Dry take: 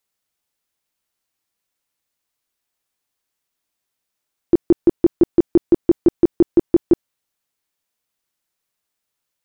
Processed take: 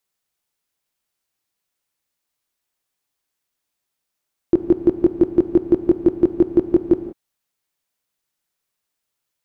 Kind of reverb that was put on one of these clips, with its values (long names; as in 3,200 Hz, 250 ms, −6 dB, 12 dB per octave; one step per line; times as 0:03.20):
reverb whose tail is shaped and stops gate 200 ms flat, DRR 9 dB
level −1 dB